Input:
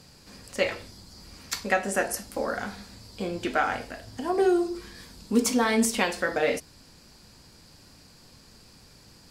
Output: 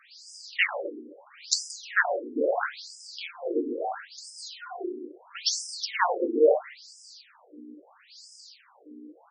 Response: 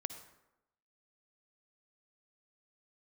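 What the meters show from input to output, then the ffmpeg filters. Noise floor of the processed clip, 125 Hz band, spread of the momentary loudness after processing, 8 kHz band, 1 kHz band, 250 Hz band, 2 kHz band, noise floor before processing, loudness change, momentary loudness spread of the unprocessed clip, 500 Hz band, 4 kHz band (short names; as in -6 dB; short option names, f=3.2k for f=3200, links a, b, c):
-59 dBFS, under -25 dB, 22 LU, -1.5 dB, -2.0 dB, -7.0 dB, 0.0 dB, -54 dBFS, -1.0 dB, 21 LU, 0.0 dB, +3.0 dB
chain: -filter_complex "[0:a]equalizer=f=13k:w=0.91:g=5,asplit=2[a][b];[b]adelay=129,lowpass=f=950:p=1,volume=-9.5dB,asplit=2[c][d];[d]adelay=129,lowpass=f=950:p=1,volume=0.48,asplit=2[e][f];[f]adelay=129,lowpass=f=950:p=1,volume=0.48,asplit=2[g][h];[h]adelay=129,lowpass=f=950:p=1,volume=0.48,asplit=2[i][j];[j]adelay=129,lowpass=f=950:p=1,volume=0.48[k];[a][c][e][g][i][k]amix=inputs=6:normalize=0,aeval=exprs='val(0)+0.0126*(sin(2*PI*60*n/s)+sin(2*PI*2*60*n/s)/2+sin(2*PI*3*60*n/s)/3+sin(2*PI*4*60*n/s)/4+sin(2*PI*5*60*n/s)/5)':c=same,asplit=2[l][m];[1:a]atrim=start_sample=2205,asetrate=48510,aresample=44100[n];[m][n]afir=irnorm=-1:irlink=0,volume=6.5dB[o];[l][o]amix=inputs=2:normalize=0,afftfilt=real='re*between(b*sr/1024,320*pow(7000/320,0.5+0.5*sin(2*PI*0.75*pts/sr))/1.41,320*pow(7000/320,0.5+0.5*sin(2*PI*0.75*pts/sr))*1.41)':imag='im*between(b*sr/1024,320*pow(7000/320,0.5+0.5*sin(2*PI*0.75*pts/sr))/1.41,320*pow(7000/320,0.5+0.5*sin(2*PI*0.75*pts/sr))*1.41)':win_size=1024:overlap=0.75"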